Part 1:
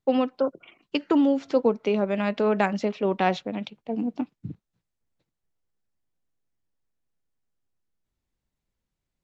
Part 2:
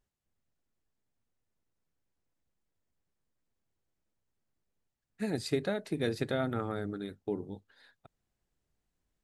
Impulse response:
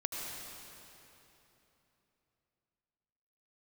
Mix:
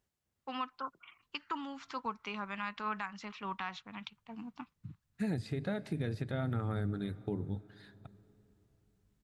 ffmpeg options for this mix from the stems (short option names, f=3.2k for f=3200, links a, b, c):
-filter_complex "[0:a]lowshelf=f=780:t=q:w=3:g=-11.5,adelay=400,volume=-6.5dB[a];[1:a]highpass=60,acrossover=split=3200[b][c];[c]acompressor=threshold=-54dB:ratio=4:attack=1:release=60[d];[b][d]amix=inputs=2:normalize=0,volume=1dB,asplit=2[e][f];[f]volume=-21.5dB[g];[2:a]atrim=start_sample=2205[h];[g][h]afir=irnorm=-1:irlink=0[i];[a][e][i]amix=inputs=3:normalize=0,asubboost=boost=4.5:cutoff=160,alimiter=level_in=1.5dB:limit=-24dB:level=0:latency=1:release=288,volume=-1.5dB"